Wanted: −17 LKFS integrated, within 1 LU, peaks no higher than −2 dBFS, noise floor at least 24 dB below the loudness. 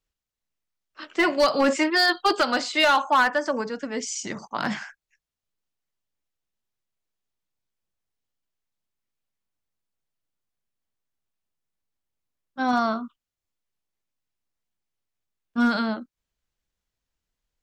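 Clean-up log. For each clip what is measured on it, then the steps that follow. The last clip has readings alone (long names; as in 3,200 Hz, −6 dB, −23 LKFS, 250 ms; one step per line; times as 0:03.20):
share of clipped samples 0.3%; peaks flattened at −13.0 dBFS; integrated loudness −23.0 LKFS; sample peak −13.0 dBFS; target loudness −17.0 LKFS
→ clipped peaks rebuilt −13 dBFS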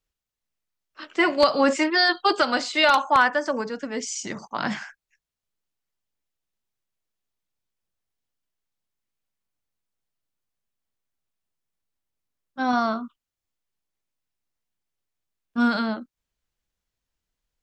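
share of clipped samples 0.0%; integrated loudness −22.5 LKFS; sample peak −4.0 dBFS; target loudness −17.0 LKFS
→ level +5.5 dB
brickwall limiter −2 dBFS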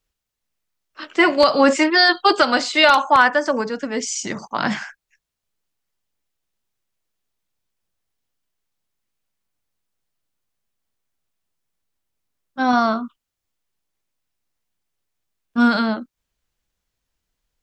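integrated loudness −17.5 LKFS; sample peak −2.0 dBFS; background noise floor −82 dBFS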